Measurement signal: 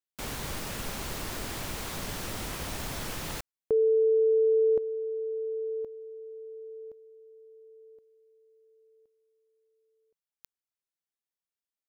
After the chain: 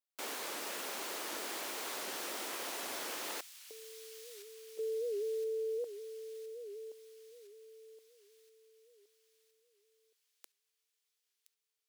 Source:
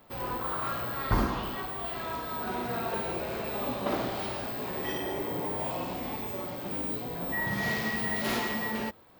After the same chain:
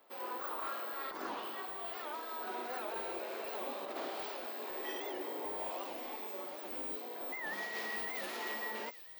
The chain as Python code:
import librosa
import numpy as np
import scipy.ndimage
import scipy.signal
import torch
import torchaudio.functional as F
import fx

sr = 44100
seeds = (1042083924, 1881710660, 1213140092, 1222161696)

y = scipy.signal.sosfilt(scipy.signal.butter(4, 320.0, 'highpass', fs=sr, output='sos'), x)
y = fx.over_compress(y, sr, threshold_db=-32.0, ratio=-0.5)
y = fx.echo_wet_highpass(y, sr, ms=1017, feedback_pct=60, hz=3100.0, wet_db=-11.0)
y = fx.record_warp(y, sr, rpm=78.0, depth_cents=160.0)
y = F.gain(torch.from_numpy(y), -7.0).numpy()